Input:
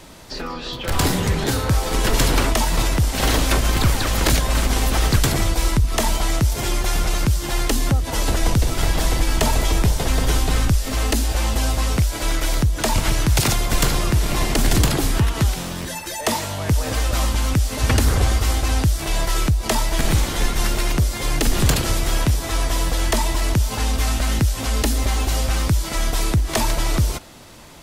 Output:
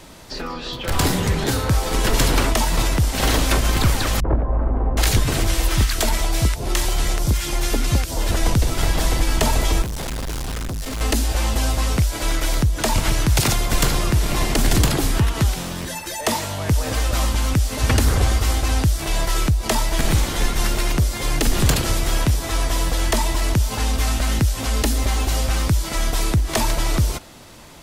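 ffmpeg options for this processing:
-filter_complex "[0:a]asettb=1/sr,asplit=3[a][b][c];[a]atrim=end=4.204[d];[b]atrim=start=4.2:end=8.31,asetpts=PTS-STARTPTS,afade=t=in:d=0.004:c=qsin,afade=t=out:st=4.106:d=0.004:c=qsin,acrossover=split=180|1100[e][f][g];[f]adelay=40[h];[g]adelay=770[i];[e][h][i]amix=inputs=3:normalize=0,atrim=end_sample=181251[j];[c]atrim=start=8.306[k];[d][j]acrossfade=d=0.004:c1=hsin:c2=qsin[l];[l][k]acrossfade=d=0.004:c1=qsin:c2=hsin,asettb=1/sr,asplit=3[m][n][o];[m]atrim=end=9.824[p];[n]atrim=start=9.82:end=11.01,asetpts=PTS-STARTPTS,afade=t=in:d=0.004:c=qsin,afade=t=out:st=1.186:d=0.004:c=qsin,asoftclip=type=hard:threshold=-24.5dB[q];[o]atrim=start=11.006[r];[p][q]acrossfade=d=0.004:c1=hsin:c2=qsin[s];[s][r]acrossfade=d=0.004:c1=qsin:c2=hsin"

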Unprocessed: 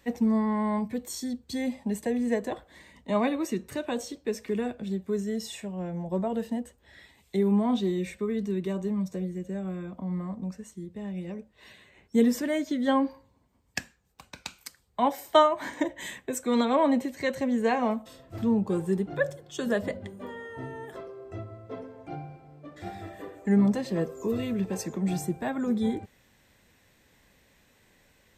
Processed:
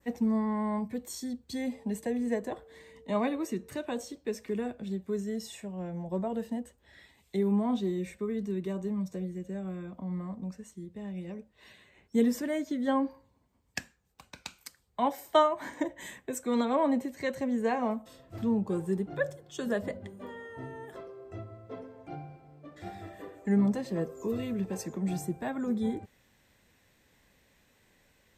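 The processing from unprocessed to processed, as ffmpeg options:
-filter_complex "[0:a]asettb=1/sr,asplit=3[a][b][c];[a]atrim=end=1.724[d];[b]atrim=start=1.72:end=3.73,asetpts=PTS-STARTPTS,afade=t=in:d=0.004:c=qsin,afade=t=out:st=2.006:d=0.004:c=qsin,aeval=exprs='val(0)+0.00355*sin(2*PI*450*n/s)':c=same[e];[c]atrim=start=3.726[f];[d][e]acrossfade=d=0.004:c1=hsin:c2=qsin[g];[g][f]acrossfade=d=0.004:c1=qsin:c2=hsin,adynamicequalizer=threshold=0.00355:dfrequency=3400:dqfactor=0.84:tfrequency=3400:tqfactor=0.84:attack=5:release=100:ratio=0.375:range=3:mode=cutabove:tftype=bell,volume=-3.5dB"

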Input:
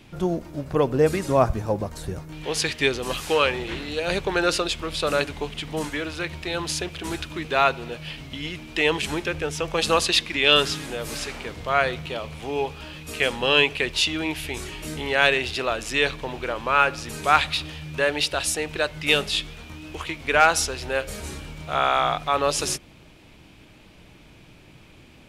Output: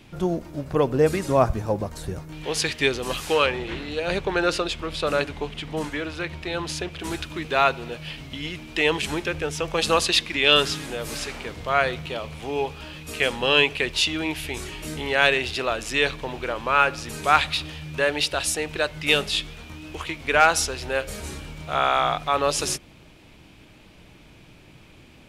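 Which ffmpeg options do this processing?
-filter_complex "[0:a]asettb=1/sr,asplit=3[a][b][c];[a]atrim=end=3.464[d];[b]atrim=start=3.46:end=7,asetpts=PTS-STARTPTS,afade=t=in:d=0.004:c=qsin,afade=t=out:st=3.536:d=0.004:c=qsin,highshelf=f=5.1k:g=-7.5[e];[c]atrim=start=6.996[f];[d][e]acrossfade=d=0.004:c1=hsin:c2=qsin[g];[g][f]acrossfade=d=0.004:c1=qsin:c2=hsin"

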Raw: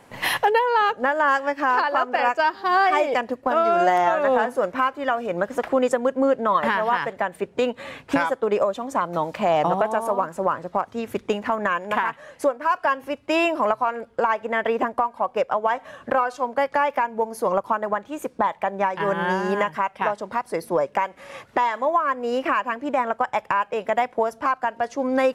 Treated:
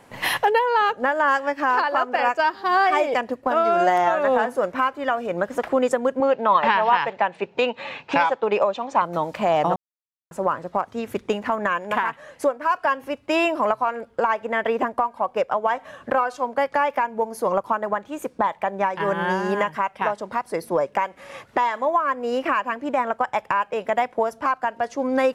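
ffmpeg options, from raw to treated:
-filter_complex "[0:a]asettb=1/sr,asplit=3[a][b][c];[a]atrim=end=6.204[d];[b]atrim=start=6.2:end=9.02,asetpts=PTS-STARTPTS,afade=t=in:d=0.004:c=qsin,afade=t=out:st=2.816:d=0.004:c=qsin,highpass=140,equalizer=f=270:t=q:w=4:g=-5,equalizer=f=870:t=q:w=4:g=8,equalizer=f=2.6k:t=q:w=4:g=9,equalizer=f=4k:t=q:w=4:g=4,lowpass=f=6.2k:w=0.5412,lowpass=f=6.2k:w=1.3066[e];[c]atrim=start=9.016[f];[d][e]acrossfade=d=0.004:c1=hsin:c2=qsin[g];[g][f]acrossfade=d=0.004:c1=qsin:c2=hsin,asplit=3[h][i][j];[h]atrim=end=9.76,asetpts=PTS-STARTPTS,afade=t=out:st=9.756:d=0.004:c=hsin[k];[i]atrim=start=9.76:end=10.31,asetpts=PTS-STARTPTS,volume=0[l];[j]atrim=start=10.31,asetpts=PTS-STARTPTS,afade=t=in:d=0.004:c=hsin[m];[k][l][m]concat=n=3:v=0:a=1"

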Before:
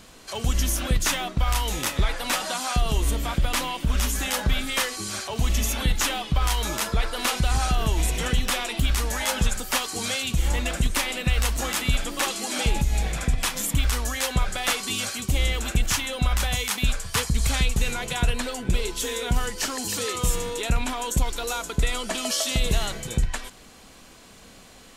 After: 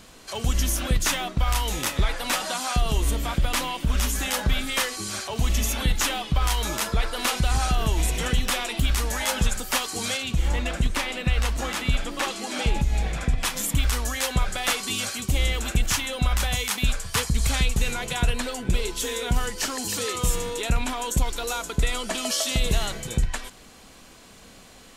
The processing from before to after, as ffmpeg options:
-filter_complex "[0:a]asettb=1/sr,asplit=3[a][b][c];[a]atrim=end=10.174[d];[b]atrim=start=10.17:end=13.45,asetpts=PTS-STARTPTS,afade=t=in:d=0.004:c=qsin,afade=t=out:st=3.276:d=0.004:c=qsin,lowpass=f=4k:p=1[e];[c]atrim=start=13.446[f];[d][e]acrossfade=d=0.004:c1=hsin:c2=qsin[g];[g][f]acrossfade=d=0.004:c1=qsin:c2=hsin"

